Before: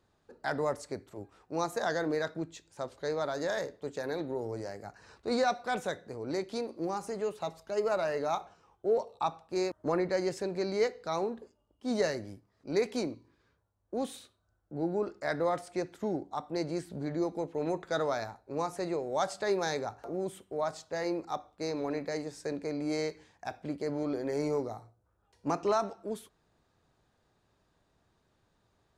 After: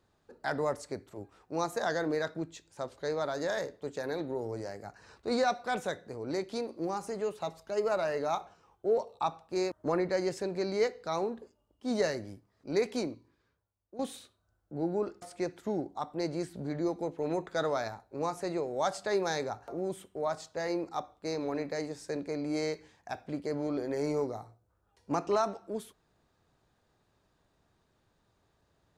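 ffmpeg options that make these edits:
-filter_complex "[0:a]asplit=3[s0][s1][s2];[s0]atrim=end=13.99,asetpts=PTS-STARTPTS,afade=t=out:st=12.97:d=1.02:silence=0.188365[s3];[s1]atrim=start=13.99:end=15.222,asetpts=PTS-STARTPTS,afade=t=in:d=0.004:c=hsin:silence=0.188365[s4];[s2]atrim=start=15.578[s5];[s3][s4]concat=n=2:v=0:a=1[s6];[s6][s5]acrossfade=d=0.004:c1=hsin:c2=hsin"

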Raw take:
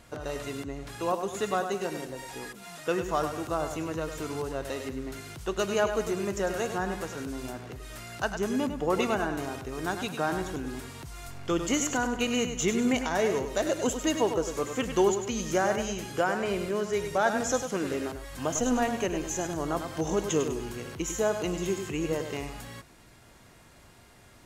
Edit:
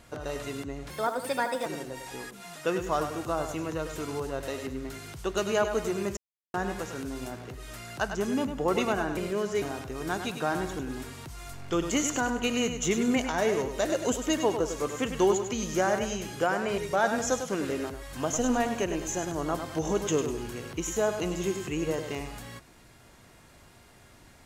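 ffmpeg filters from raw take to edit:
-filter_complex "[0:a]asplit=8[s0][s1][s2][s3][s4][s5][s6][s7];[s0]atrim=end=0.904[s8];[s1]atrim=start=0.9:end=1.88,asetpts=PTS-STARTPTS,asetrate=56889,aresample=44100,atrim=end_sample=33502,asetpts=PTS-STARTPTS[s9];[s2]atrim=start=1.876:end=6.39,asetpts=PTS-STARTPTS,afade=t=out:st=4.51:d=0.004:c=hsin[s10];[s3]atrim=start=6.39:end=6.76,asetpts=PTS-STARTPTS,volume=0[s11];[s4]atrim=start=6.76:end=9.392,asetpts=PTS-STARTPTS,afade=t=in:d=0.004:c=hsin[s12];[s5]atrim=start=16.548:end=17.002[s13];[s6]atrim=start=9.388:end=16.552[s14];[s7]atrim=start=16.998[s15];[s8][s9]acrossfade=d=0.004:c1=hsin:c2=hsin[s16];[s10][s11][s12]concat=n=3:v=0:a=1[s17];[s16][s17]acrossfade=d=0.004:c1=hsin:c2=hsin[s18];[s18][s13]acrossfade=d=0.004:c1=hsin:c2=hsin[s19];[s19][s14]acrossfade=d=0.004:c1=hsin:c2=hsin[s20];[s20][s15]acrossfade=d=0.004:c1=hsin:c2=hsin"

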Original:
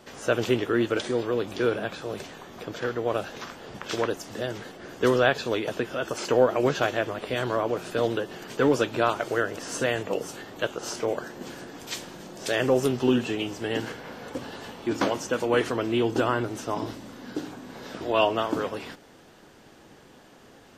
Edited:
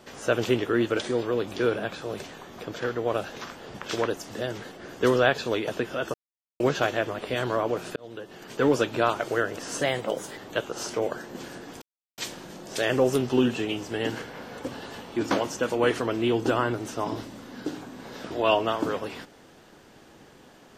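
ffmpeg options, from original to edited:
-filter_complex "[0:a]asplit=7[s0][s1][s2][s3][s4][s5][s6];[s0]atrim=end=6.14,asetpts=PTS-STARTPTS,afade=t=out:st=6.136:d=0.004:c=hsin[s7];[s1]atrim=start=6.14:end=6.6,asetpts=PTS-STARTPTS,volume=0[s8];[s2]atrim=start=6.6:end=7.96,asetpts=PTS-STARTPTS,afade=t=in:d=0.004:c=hsin,afade=t=out:st=1.356:d=0.004:c=hsin[s9];[s3]atrim=start=7.96:end=9.814,asetpts=PTS-STARTPTS,afade=t=in:d=0.74[s10];[s4]atrim=start=9.81:end=10.44,asetpts=PTS-STARTPTS,asetrate=48951,aresample=44100[s11];[s5]atrim=start=10.436:end=11.88,asetpts=PTS-STARTPTS,afade=t=out:st=1.44:d=0.004:c=hsin,apad=pad_dur=0.36[s12];[s6]atrim=start=11.88,asetpts=PTS-STARTPTS,afade=t=in:d=0.004:c=hsin[s13];[s7][s8][s9][s10]concat=n=4:v=0:a=1[s14];[s14][s11]acrossfade=d=0.004:c1=hsin:c2=hsin[s15];[s12][s13]concat=n=2:v=0:a=1[s16];[s15][s16]acrossfade=d=0.004:c1=hsin:c2=hsin"

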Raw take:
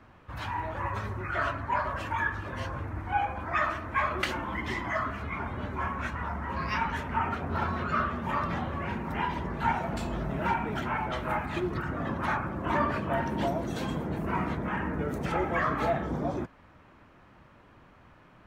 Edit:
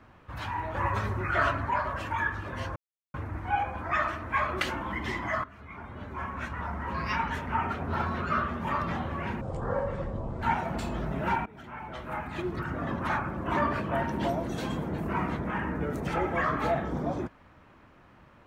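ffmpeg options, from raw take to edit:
-filter_complex "[0:a]asplit=8[s0][s1][s2][s3][s4][s5][s6][s7];[s0]atrim=end=0.742[s8];[s1]atrim=start=0.738:end=1.702,asetpts=PTS-STARTPTS,volume=1.58[s9];[s2]atrim=start=1.698:end=2.76,asetpts=PTS-STARTPTS,afade=t=out:st=1.058:d=0.004:c=hsin,apad=pad_dur=0.38[s10];[s3]atrim=start=2.76:end=5.06,asetpts=PTS-STARTPTS,afade=t=in:d=0.004:c=hsin,afade=t=out:st=2.296:d=0.004:c=hsin:silence=0.149624[s11];[s4]atrim=start=5.06:end=9.034,asetpts=PTS-STARTPTS,afade=t=in:d=1.34:silence=0.149624[s12];[s5]atrim=start=9.03:end=9.61,asetpts=PTS-STARTPTS,asetrate=25137,aresample=44100[s13];[s6]atrim=start=9.606:end=10.64,asetpts=PTS-STARTPTS,afade=t=out:st=1.03:d=0.004:c=hsin:silence=0.0944061[s14];[s7]atrim=start=10.64,asetpts=PTS-STARTPTS,afade=t=in:d=1.32:silence=0.0944061[s15];[s8][s9]acrossfade=d=0.004:c1=hsin:c2=hsin[s16];[s10][s11][s12]concat=n=3:v=0:a=1[s17];[s16][s17]acrossfade=d=0.004:c1=hsin:c2=hsin[s18];[s18][s13]acrossfade=d=0.004:c1=hsin:c2=hsin[s19];[s14][s15]concat=n=2:v=0:a=1[s20];[s19][s20]acrossfade=d=0.004:c1=hsin:c2=hsin"

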